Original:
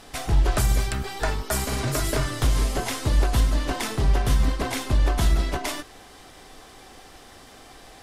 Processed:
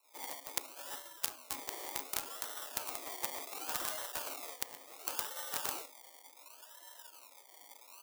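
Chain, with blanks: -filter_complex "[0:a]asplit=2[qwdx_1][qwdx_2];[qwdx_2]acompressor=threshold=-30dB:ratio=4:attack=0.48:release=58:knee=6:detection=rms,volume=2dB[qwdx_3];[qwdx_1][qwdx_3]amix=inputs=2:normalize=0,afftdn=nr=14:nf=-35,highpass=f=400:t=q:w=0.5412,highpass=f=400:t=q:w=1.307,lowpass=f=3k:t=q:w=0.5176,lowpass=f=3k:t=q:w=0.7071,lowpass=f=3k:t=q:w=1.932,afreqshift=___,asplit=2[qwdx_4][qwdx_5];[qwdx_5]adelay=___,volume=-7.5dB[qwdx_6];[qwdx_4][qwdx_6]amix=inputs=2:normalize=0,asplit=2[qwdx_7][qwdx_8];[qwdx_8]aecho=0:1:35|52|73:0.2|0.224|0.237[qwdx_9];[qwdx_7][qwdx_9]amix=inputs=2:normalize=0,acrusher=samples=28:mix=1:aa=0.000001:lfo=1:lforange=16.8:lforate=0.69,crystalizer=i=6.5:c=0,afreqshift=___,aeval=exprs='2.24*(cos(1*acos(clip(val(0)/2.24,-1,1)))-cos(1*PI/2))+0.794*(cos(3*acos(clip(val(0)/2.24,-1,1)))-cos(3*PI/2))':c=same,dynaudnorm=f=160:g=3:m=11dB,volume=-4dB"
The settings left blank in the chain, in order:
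-63, 16, 250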